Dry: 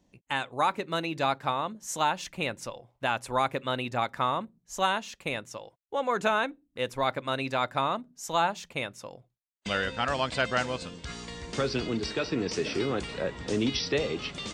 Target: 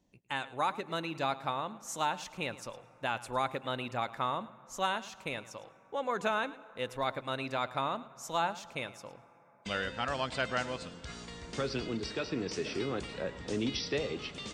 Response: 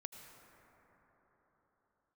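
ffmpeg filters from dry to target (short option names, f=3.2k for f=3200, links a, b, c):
-filter_complex "[0:a]asplit=2[a][b];[1:a]atrim=start_sample=2205,adelay=108[c];[b][c]afir=irnorm=-1:irlink=0,volume=-12dB[d];[a][d]amix=inputs=2:normalize=0,volume=-5.5dB"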